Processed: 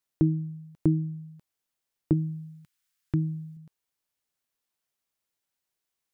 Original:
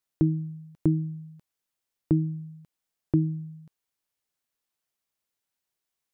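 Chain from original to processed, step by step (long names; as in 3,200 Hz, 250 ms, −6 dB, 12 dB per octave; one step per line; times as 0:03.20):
0:02.13–0:03.57: drawn EQ curve 130 Hz 0 dB, 560 Hz −12 dB, 1,500 Hz +6 dB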